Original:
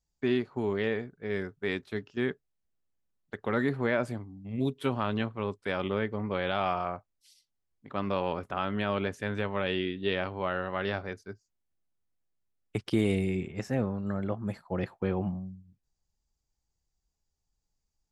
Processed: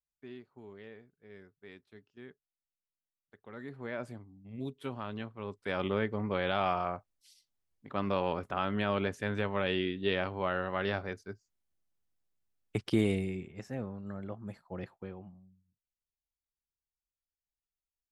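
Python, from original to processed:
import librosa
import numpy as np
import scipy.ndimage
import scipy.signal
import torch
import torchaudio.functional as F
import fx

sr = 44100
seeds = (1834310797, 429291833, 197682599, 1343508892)

y = fx.gain(x, sr, db=fx.line((3.44, -20.0), (4.01, -9.5), (5.36, -9.5), (5.81, -1.0), (13.01, -1.0), (13.45, -9.0), (14.9, -9.0), (15.31, -20.0)))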